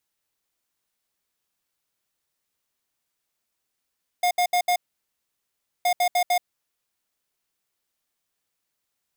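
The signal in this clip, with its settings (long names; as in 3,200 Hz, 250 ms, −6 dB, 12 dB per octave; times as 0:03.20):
beeps in groups square 714 Hz, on 0.08 s, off 0.07 s, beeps 4, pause 1.09 s, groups 2, −20.5 dBFS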